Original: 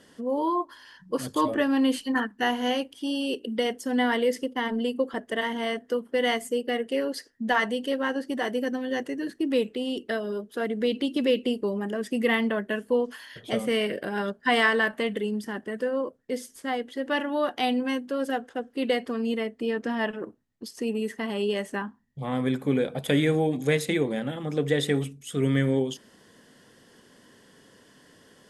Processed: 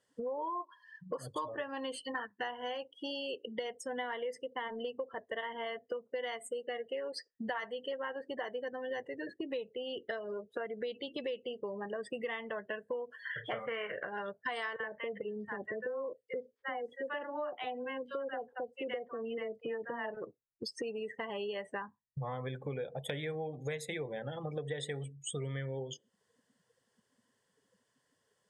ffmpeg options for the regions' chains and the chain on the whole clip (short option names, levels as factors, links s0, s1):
-filter_complex "[0:a]asettb=1/sr,asplit=3[s0][s1][s2];[s0]atrim=end=13.254[s3];[s1]atrim=start=13.25:end=14.07,asetpts=PTS-STARTPTS,afade=t=in:d=0.004:c=qsin,afade=t=out:st=0.816:d=0.004:c=qsin,acrossover=split=3200[s4][s5];[s5]acompressor=threshold=0.00251:ratio=4:attack=1:release=60[s6];[s4][s6]amix=inputs=2:normalize=0,equalizer=f=1400:t=o:w=1.4:g=12,asplit=2[s7][s8];[s8]adelay=35,volume=0.299[s9];[s7][s9]amix=inputs=2:normalize=0,atrim=end_sample=36162[s10];[s2]atrim=start=14.066[s11];[s3][s10]acrossfade=d=0.004:c1=hsin:c2=qsin[s12];[s12][s11]acrossfade=d=0.004:c1=qsin:c2=hsin,asettb=1/sr,asplit=3[s13][s14][s15];[s13]atrim=end=14.764[s16];[s14]atrim=start=14.76:end=20.17,asetpts=PTS-STARTPTS,afade=t=in:d=0.004:c=qsin,afade=t=out:st=5.406:d=0.004:c=qsin,aemphasis=mode=reproduction:type=75fm,acrossover=split=840|4500[s17][s18][s19];[s17]adelay=40[s20];[s19]adelay=480[s21];[s20][s18][s21]amix=inputs=3:normalize=0,atrim=end_sample=238581[s22];[s15]atrim=start=20.166[s23];[s16][s22]acrossfade=d=0.004:c1=hsin:c2=qsin[s24];[s24][s23]acrossfade=d=0.004:c1=qsin:c2=hsin,afftdn=nr=31:nf=-39,equalizer=f=125:t=o:w=1:g=9,equalizer=f=250:t=o:w=1:g=-11,equalizer=f=500:t=o:w=1:g=7,equalizer=f=1000:t=o:w=1:g=7,equalizer=f=2000:t=o:w=1:g=4,equalizer=f=4000:t=o:w=1:g=3,equalizer=f=8000:t=o:w=1:g=11,acompressor=threshold=0.00891:ratio=6,volume=1.41"